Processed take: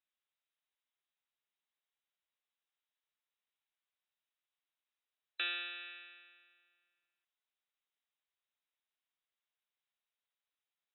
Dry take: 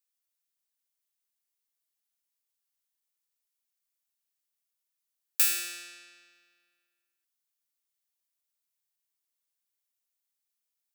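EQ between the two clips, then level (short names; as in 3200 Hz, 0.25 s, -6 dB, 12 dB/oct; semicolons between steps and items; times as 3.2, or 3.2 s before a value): HPF 510 Hz 12 dB/oct; brick-wall FIR low-pass 4000 Hz; dynamic EQ 2100 Hz, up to -5 dB, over -48 dBFS, Q 2; +1.0 dB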